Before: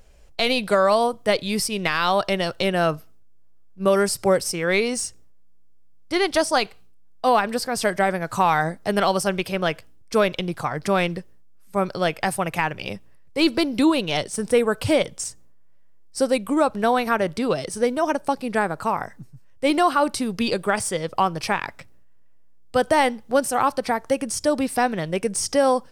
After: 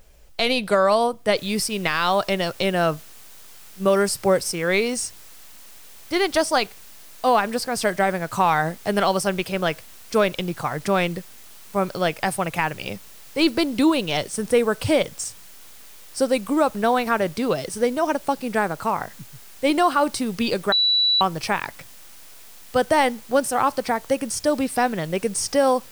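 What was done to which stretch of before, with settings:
0:01.37: noise floor change −64 dB −47 dB
0:20.72–0:21.21: beep over 3,940 Hz −15.5 dBFS

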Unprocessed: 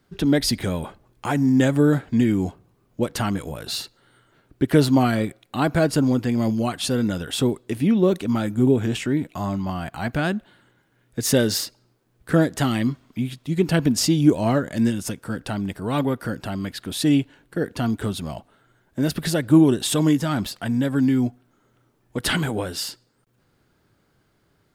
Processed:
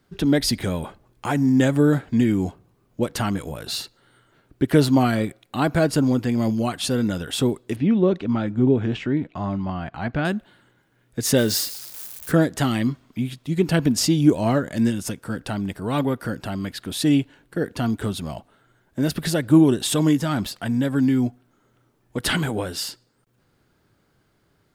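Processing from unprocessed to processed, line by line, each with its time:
0:07.76–0:10.25: high-frequency loss of the air 200 metres
0:11.38–0:12.32: spike at every zero crossing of −25.5 dBFS

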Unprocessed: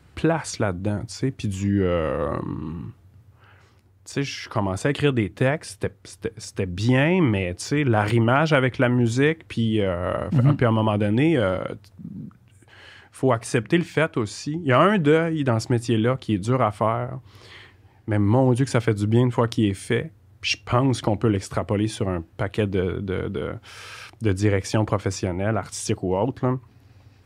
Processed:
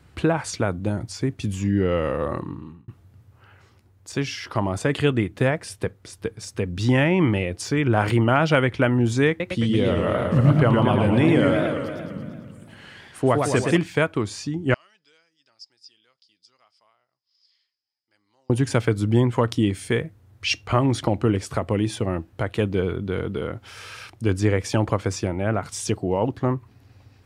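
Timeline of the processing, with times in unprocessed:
0:02.06–0:02.88: fade out equal-power
0:09.28–0:13.77: feedback echo with a swinging delay time 113 ms, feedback 66%, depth 200 cents, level −4 dB
0:14.74–0:18.50: resonant band-pass 5,000 Hz, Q 19

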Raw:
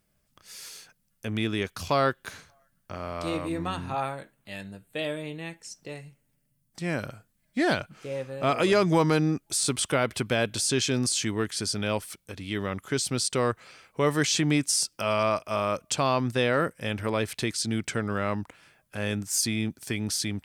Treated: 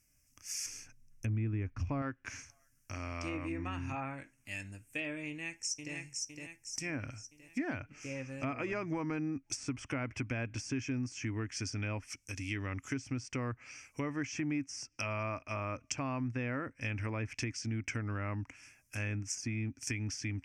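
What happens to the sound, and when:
0:00.66–0:02.02: spectral tilt −3 dB per octave
0:05.27–0:05.95: delay throw 510 ms, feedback 50%, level −4 dB
whole clip: treble cut that deepens with the level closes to 1,600 Hz, closed at −24.5 dBFS; drawn EQ curve 120 Hz 0 dB, 180 Hz −15 dB, 270 Hz +1 dB, 400 Hz −13 dB, 570 Hz −12 dB, 1,400 Hz −7 dB, 2,500 Hz +4 dB, 3,900 Hz −19 dB, 5,600 Hz +12 dB, 9,200 Hz +3 dB; downward compressor 3 to 1, threshold −34 dBFS

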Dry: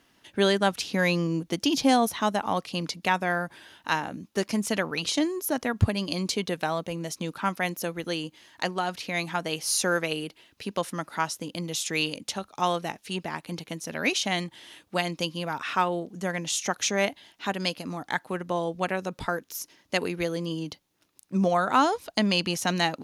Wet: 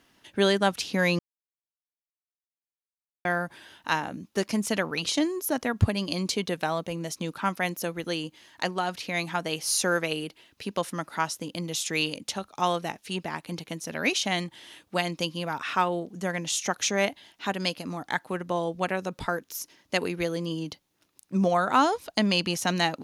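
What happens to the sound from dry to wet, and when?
0:01.19–0:03.25: silence

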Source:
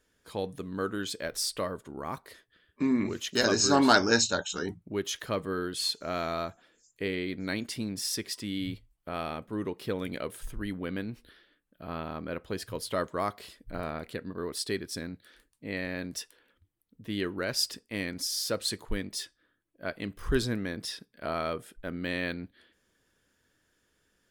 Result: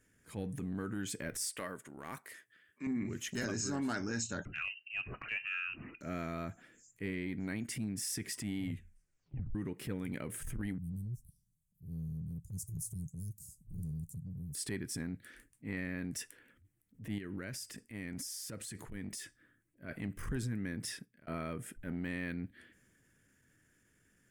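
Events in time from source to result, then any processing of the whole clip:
0:01.49–0:02.87: high-pass filter 810 Hz 6 dB per octave
0:04.45–0:06.01: voice inversion scrambler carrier 2,900 Hz
0:08.65: tape stop 0.90 s
0:10.78–0:14.55: Chebyshev band-stop filter 160–6,200 Hz, order 4
0:17.18–0:19.89: downward compressor 8 to 1, threshold −39 dBFS
0:20.85–0:21.27: fade out
whole clip: octave-band graphic EQ 125/250/500/1,000/2,000/4,000/8,000 Hz +9/+4/−4/−6/+7/−12/+6 dB; transient designer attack −10 dB, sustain +2 dB; downward compressor 5 to 1, threshold −35 dBFS

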